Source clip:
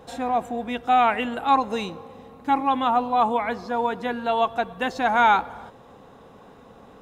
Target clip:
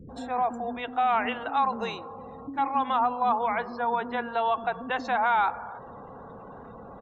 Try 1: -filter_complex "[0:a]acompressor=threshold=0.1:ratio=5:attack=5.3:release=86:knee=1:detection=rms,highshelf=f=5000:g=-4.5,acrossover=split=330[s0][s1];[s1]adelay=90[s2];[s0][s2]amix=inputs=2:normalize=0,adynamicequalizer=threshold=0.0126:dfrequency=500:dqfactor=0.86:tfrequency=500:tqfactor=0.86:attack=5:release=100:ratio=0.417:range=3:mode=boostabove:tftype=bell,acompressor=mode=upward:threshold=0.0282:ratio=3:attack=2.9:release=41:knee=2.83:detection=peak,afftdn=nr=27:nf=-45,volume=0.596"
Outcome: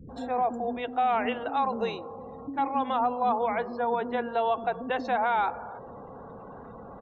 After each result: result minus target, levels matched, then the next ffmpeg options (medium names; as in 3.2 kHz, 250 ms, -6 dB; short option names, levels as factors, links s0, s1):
8 kHz band -5.0 dB; 500 Hz band +3.5 dB
-filter_complex "[0:a]acompressor=threshold=0.1:ratio=5:attack=5.3:release=86:knee=1:detection=rms,acrossover=split=330[s0][s1];[s1]adelay=90[s2];[s0][s2]amix=inputs=2:normalize=0,adynamicequalizer=threshold=0.0126:dfrequency=500:dqfactor=0.86:tfrequency=500:tqfactor=0.86:attack=5:release=100:ratio=0.417:range=3:mode=boostabove:tftype=bell,acompressor=mode=upward:threshold=0.0282:ratio=3:attack=2.9:release=41:knee=2.83:detection=peak,afftdn=nr=27:nf=-45,volume=0.596"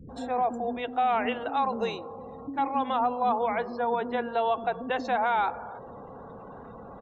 500 Hz band +3.5 dB
-filter_complex "[0:a]acompressor=threshold=0.1:ratio=5:attack=5.3:release=86:knee=1:detection=rms,acrossover=split=330[s0][s1];[s1]adelay=90[s2];[s0][s2]amix=inputs=2:normalize=0,adynamicequalizer=threshold=0.0126:dfrequency=1100:dqfactor=0.86:tfrequency=1100:tqfactor=0.86:attack=5:release=100:ratio=0.417:range=3:mode=boostabove:tftype=bell,acompressor=mode=upward:threshold=0.0282:ratio=3:attack=2.9:release=41:knee=2.83:detection=peak,afftdn=nr=27:nf=-45,volume=0.596"